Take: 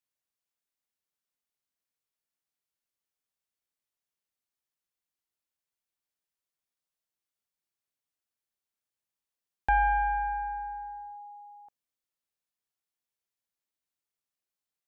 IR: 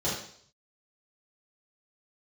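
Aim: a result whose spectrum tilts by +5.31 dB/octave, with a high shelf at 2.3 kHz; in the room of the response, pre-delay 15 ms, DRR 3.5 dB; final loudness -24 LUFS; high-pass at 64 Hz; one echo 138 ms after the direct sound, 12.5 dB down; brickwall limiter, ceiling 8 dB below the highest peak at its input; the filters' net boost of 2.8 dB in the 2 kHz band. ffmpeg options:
-filter_complex "[0:a]highpass=64,equalizer=f=2000:t=o:g=6,highshelf=f=2300:g=-4.5,alimiter=limit=0.075:level=0:latency=1,aecho=1:1:138:0.237,asplit=2[s0][s1];[1:a]atrim=start_sample=2205,adelay=15[s2];[s1][s2]afir=irnorm=-1:irlink=0,volume=0.224[s3];[s0][s3]amix=inputs=2:normalize=0,volume=1.68"

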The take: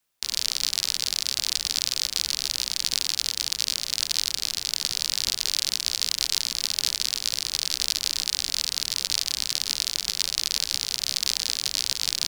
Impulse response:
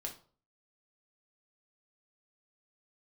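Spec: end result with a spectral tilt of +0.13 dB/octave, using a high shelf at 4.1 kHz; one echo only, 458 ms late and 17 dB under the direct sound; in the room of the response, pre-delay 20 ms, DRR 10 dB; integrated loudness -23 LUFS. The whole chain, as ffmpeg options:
-filter_complex "[0:a]highshelf=f=4100:g=-4,aecho=1:1:458:0.141,asplit=2[s0][s1];[1:a]atrim=start_sample=2205,adelay=20[s2];[s1][s2]afir=irnorm=-1:irlink=0,volume=0.376[s3];[s0][s3]amix=inputs=2:normalize=0,volume=1.41"

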